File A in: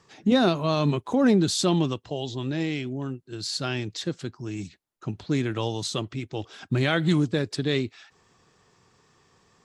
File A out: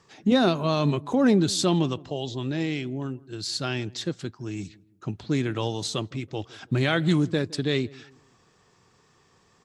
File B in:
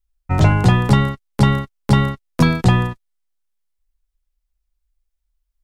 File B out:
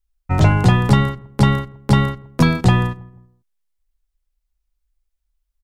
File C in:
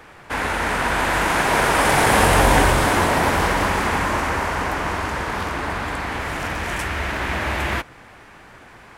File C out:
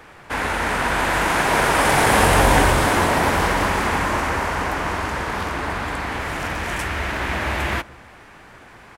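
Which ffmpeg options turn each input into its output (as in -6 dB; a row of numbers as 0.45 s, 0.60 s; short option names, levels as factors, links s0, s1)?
-filter_complex "[0:a]asplit=2[s0][s1];[s1]adelay=163,lowpass=f=920:p=1,volume=0.0891,asplit=2[s2][s3];[s3]adelay=163,lowpass=f=920:p=1,volume=0.4,asplit=2[s4][s5];[s5]adelay=163,lowpass=f=920:p=1,volume=0.4[s6];[s0][s2][s4][s6]amix=inputs=4:normalize=0"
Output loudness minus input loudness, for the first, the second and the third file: 0.0 LU, 0.0 LU, 0.0 LU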